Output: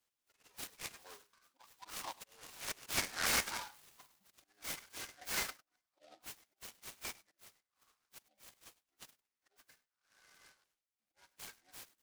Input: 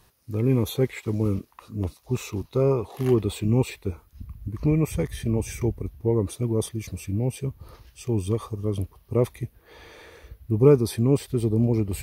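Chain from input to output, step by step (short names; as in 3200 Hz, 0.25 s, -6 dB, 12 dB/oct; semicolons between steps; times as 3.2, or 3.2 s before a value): Doppler pass-by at 2.9, 43 m/s, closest 2.2 m; spectral noise reduction 19 dB; HPF 480 Hz 12 dB/oct; comb 6.7 ms, depth 70%; reverse; compressor 12:1, threshold -52 dBFS, peak gain reduction 24 dB; reverse; auto swell 0.555 s; formant-preserving pitch shift -5.5 st; sine folder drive 14 dB, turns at -44.5 dBFS; LFO high-pass saw down 0.47 Hz 860–3300 Hz; on a send: echo 0.101 s -20.5 dB; on the sum: noise-modulated delay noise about 3200 Hz, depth 0.09 ms; gain +13.5 dB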